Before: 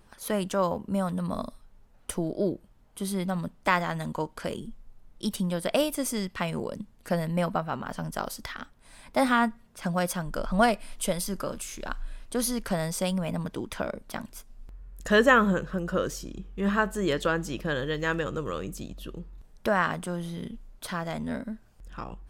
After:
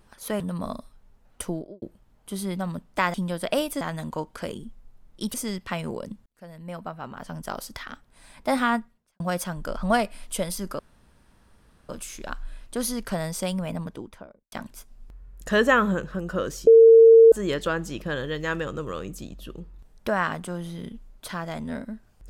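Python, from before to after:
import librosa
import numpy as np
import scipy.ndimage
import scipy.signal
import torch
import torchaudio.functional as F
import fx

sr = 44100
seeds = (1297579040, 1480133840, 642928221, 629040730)

y = fx.studio_fade_out(x, sr, start_s=2.17, length_s=0.34)
y = fx.studio_fade_out(y, sr, start_s=13.25, length_s=0.86)
y = fx.edit(y, sr, fx.cut(start_s=0.4, length_s=0.69),
    fx.move(start_s=5.36, length_s=0.67, to_s=3.83),
    fx.fade_in_span(start_s=6.95, length_s=1.39),
    fx.fade_out_span(start_s=9.45, length_s=0.44, curve='qua'),
    fx.insert_room_tone(at_s=11.48, length_s=1.1),
    fx.bleep(start_s=16.26, length_s=0.65, hz=454.0, db=-8.0), tone=tone)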